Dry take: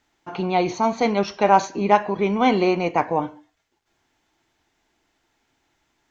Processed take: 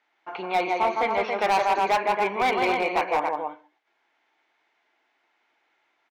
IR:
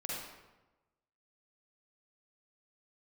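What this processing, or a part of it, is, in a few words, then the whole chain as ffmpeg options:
megaphone: -filter_complex "[0:a]highpass=560,lowpass=2.9k,equalizer=f=2.2k:t=o:w=0.23:g=5,aecho=1:1:160.3|277:0.562|0.447,asoftclip=type=hard:threshold=-17dB,asettb=1/sr,asplit=3[a][b][c];[a]atrim=end=0.734[d];[b]atrim=start=0.73:end=1.38,asetpts=PTS-STARTPTS,afade=t=in:d=0.004:c=qsin,afade=t=out:st=0.646:d=0.004:c=qsin,acrossover=split=3700[e][f];[f]acompressor=threshold=-48dB:ratio=4:attack=1:release=60[g];[e][g]amix=inputs=2:normalize=0[h];[c]atrim=start=1.376[i];[d][h]acrossfade=d=0.004:c1=hsin:c2=qsin[j];[j][i]acrossfade=d=0.004:c1=qsin:c2=hsin"

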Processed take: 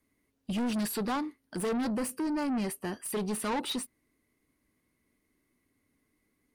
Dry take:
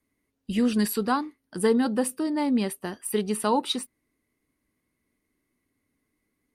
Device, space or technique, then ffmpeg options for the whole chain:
saturation between pre-emphasis and de-emphasis: -filter_complex "[0:a]highshelf=f=5.9k:g=7.5,asoftclip=type=tanh:threshold=-29.5dB,highshelf=f=5.9k:g=-7.5,asettb=1/sr,asplit=3[a][b][c];[a]atrim=end=1.894[d];[b]atrim=start=1.89:end=3.09,asetpts=PTS-STARTPTS,afade=t=in:d=0.004:c=qsin,afade=t=out:st=1.196:d=0.004:c=qsin,bandreject=f=3.6k:w=6[e];[c]atrim=start=3.086[f];[d][e]acrossfade=d=0.004:c1=hsin:c2=qsin[g];[g][f]acrossfade=d=0.004:c1=qsin:c2=hsin,volume=1.5dB"

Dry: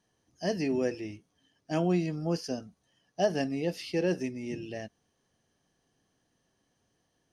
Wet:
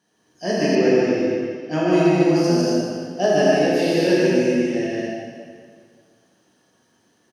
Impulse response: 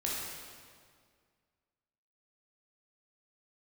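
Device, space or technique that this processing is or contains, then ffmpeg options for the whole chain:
stadium PA: -filter_complex "[0:a]highpass=160,equalizer=f=1.5k:t=o:w=0.25:g=4,aecho=1:1:148.7|233.2:0.794|0.631[a];[1:a]atrim=start_sample=2205[b];[a][b]afir=irnorm=-1:irlink=0,asettb=1/sr,asplit=3[c][d][e];[c]atrim=end=0.754[f];[d]atrim=start=0.75:end=1.93,asetpts=PTS-STARTPTS,afade=t=in:d=0.004:c=qsin,afade=t=out:st=1.176:d=0.004:c=qsin,lowpass=5.6k[g];[e]atrim=start=1.926[h];[f][g]acrossfade=d=0.004:c1=hsin:c2=qsin[i];[i][h]acrossfade=d=0.004:c1=qsin:c2=hsin,volume=5.5dB"

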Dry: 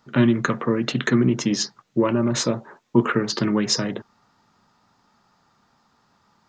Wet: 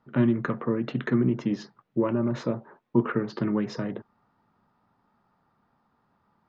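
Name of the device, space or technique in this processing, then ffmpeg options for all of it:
phone in a pocket: -af "lowpass=3.4k,highshelf=f=2.1k:g=-11.5,volume=-4.5dB"

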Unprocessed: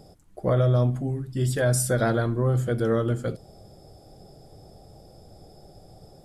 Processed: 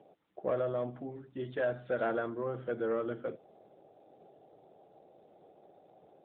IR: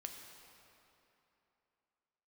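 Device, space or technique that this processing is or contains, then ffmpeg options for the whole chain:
telephone: -af "highpass=350,lowpass=3k,asoftclip=type=tanh:threshold=-18dB,volume=-4.5dB" -ar 8000 -c:a libopencore_amrnb -b:a 12200

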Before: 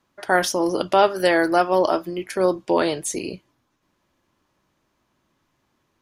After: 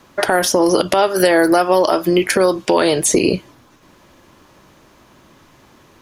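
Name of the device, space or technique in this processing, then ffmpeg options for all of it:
mastering chain: -filter_complex "[0:a]equalizer=f=480:t=o:w=0.77:g=2.5,acrossover=split=1300|7300[a][b][c];[a]acompressor=threshold=-29dB:ratio=4[d];[b]acompressor=threshold=-39dB:ratio=4[e];[c]acompressor=threshold=-43dB:ratio=4[f];[d][e][f]amix=inputs=3:normalize=0,acompressor=threshold=-31dB:ratio=2.5,asoftclip=type=tanh:threshold=-15dB,alimiter=level_in=21.5dB:limit=-1dB:release=50:level=0:latency=1,volume=-1dB"

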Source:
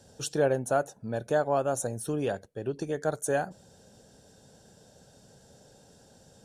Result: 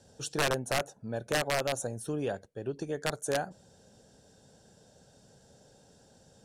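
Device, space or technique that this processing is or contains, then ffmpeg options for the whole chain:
overflowing digital effects unit: -af "aeval=exprs='(mod(7.94*val(0)+1,2)-1)/7.94':c=same,lowpass=11k,volume=-3dB"

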